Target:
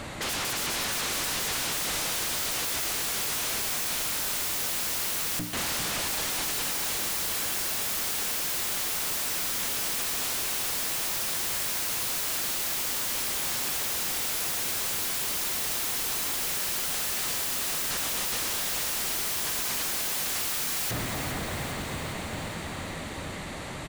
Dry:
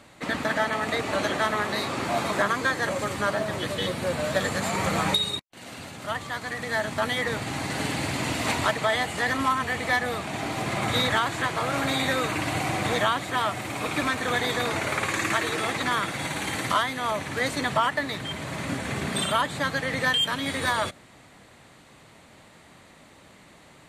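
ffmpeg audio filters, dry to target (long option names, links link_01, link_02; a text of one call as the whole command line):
ffmpeg -i in.wav -filter_complex "[0:a]lowshelf=frequency=90:gain=10.5,bandreject=frequency=60:width_type=h:width=6,bandreject=frequency=120:width_type=h:width=6,bandreject=frequency=180:width_type=h:width=6,bandreject=frequency=240:width_type=h:width=6,bandreject=frequency=300:width_type=h:width=6,dynaudnorm=framelen=460:gausssize=13:maxgain=12dB,aeval=exprs='0.0631*sin(PI/2*4.47*val(0)/0.0631)':channel_layout=same,asplit=2[link_01][link_02];[link_02]aecho=0:1:406|812|1218|1624|2030|2436|2842:0.355|0.202|0.115|0.0657|0.0375|0.0213|0.0122[link_03];[link_01][link_03]amix=inputs=2:normalize=0,volume=-3.5dB" out.wav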